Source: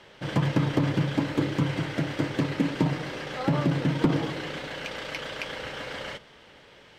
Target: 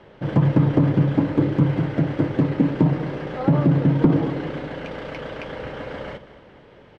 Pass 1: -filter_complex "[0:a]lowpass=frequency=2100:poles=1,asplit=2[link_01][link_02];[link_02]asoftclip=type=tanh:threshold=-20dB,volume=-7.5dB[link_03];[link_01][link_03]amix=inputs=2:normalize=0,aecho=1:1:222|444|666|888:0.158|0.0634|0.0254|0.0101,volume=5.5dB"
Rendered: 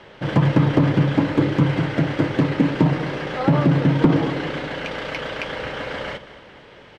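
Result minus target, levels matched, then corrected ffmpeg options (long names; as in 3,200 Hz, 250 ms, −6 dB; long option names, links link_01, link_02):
2,000 Hz band +8.0 dB
-filter_complex "[0:a]lowpass=frequency=580:poles=1,asplit=2[link_01][link_02];[link_02]asoftclip=type=tanh:threshold=-20dB,volume=-7.5dB[link_03];[link_01][link_03]amix=inputs=2:normalize=0,aecho=1:1:222|444|666|888:0.158|0.0634|0.0254|0.0101,volume=5.5dB"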